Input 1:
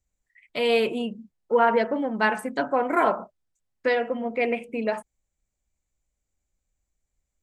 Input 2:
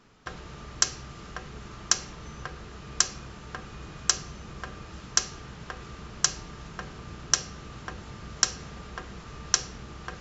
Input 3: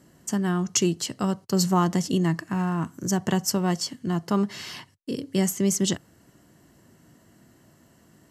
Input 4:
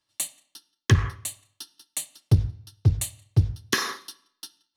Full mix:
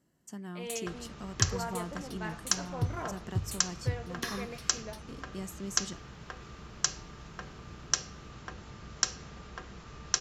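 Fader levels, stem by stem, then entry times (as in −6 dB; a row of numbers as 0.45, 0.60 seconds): −18.5, −5.0, −17.5, −12.5 decibels; 0.00, 0.60, 0.00, 0.50 seconds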